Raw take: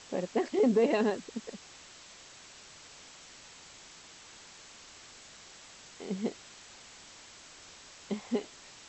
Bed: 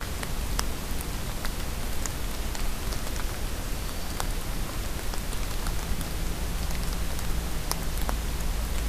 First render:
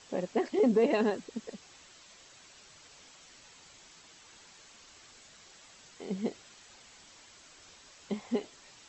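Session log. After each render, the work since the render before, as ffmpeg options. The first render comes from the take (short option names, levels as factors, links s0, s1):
-af "afftdn=nr=6:nf=-53"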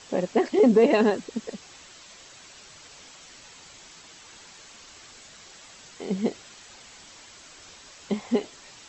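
-af "volume=2.37"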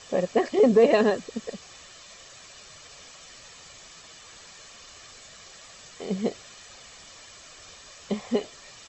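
-af "aecho=1:1:1.7:0.39"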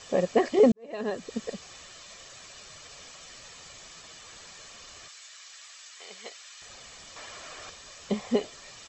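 -filter_complex "[0:a]asettb=1/sr,asplit=3[s0][s1][s2];[s0]atrim=end=5.084[s3];[s1]atrim=start=5.08:end=6.62,asetpts=PTS-STARTPTS,afade=t=in:d=0.004:c=qsin,afade=t=out:st=1.536:d=0.004:c=qsin,highpass=1300[s4];[s2]atrim=start=6.616[s5];[s3][s4]acrossfade=d=0.004:c1=hsin:c2=qsin[s6];[s6][s5]acrossfade=d=0.004:c1=qsin:c2=hsin,asettb=1/sr,asplit=3[s7][s8][s9];[s7]atrim=end=7.164[s10];[s8]atrim=start=7.16:end=7.7,asetpts=PTS-STARTPTS,afade=t=in:d=0.004:c=qsin,afade=t=out:st=0.536:d=0.004:c=qsin,equalizer=f=880:w=0.33:g=8.5[s11];[s9]atrim=start=7.696[s12];[s10][s11]acrossfade=d=0.004:c1=hsin:c2=qsin[s13];[s13][s12]acrossfade=d=0.004:c1=qsin:c2=hsin,asplit=2[s14][s15];[s14]atrim=end=0.72,asetpts=PTS-STARTPTS,afade=t=out:st=0.716:d=0.004:c=hsin[s16];[s15]atrim=start=0.72,asetpts=PTS-STARTPTS,afade=t=in:d=0.6:c=qua[s17];[s16][s17]concat=n=2:v=0:a=1"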